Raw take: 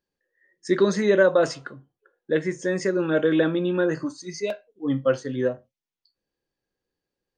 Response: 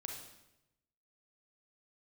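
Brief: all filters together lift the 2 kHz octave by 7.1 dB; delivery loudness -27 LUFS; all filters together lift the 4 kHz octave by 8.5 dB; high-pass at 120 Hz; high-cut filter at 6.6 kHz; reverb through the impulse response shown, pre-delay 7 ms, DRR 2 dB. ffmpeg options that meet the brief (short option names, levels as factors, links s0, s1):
-filter_complex "[0:a]highpass=120,lowpass=6600,equalizer=f=2000:t=o:g=8,equalizer=f=4000:t=o:g=8.5,asplit=2[s0][s1];[1:a]atrim=start_sample=2205,adelay=7[s2];[s1][s2]afir=irnorm=-1:irlink=0,volume=1[s3];[s0][s3]amix=inputs=2:normalize=0,volume=0.473"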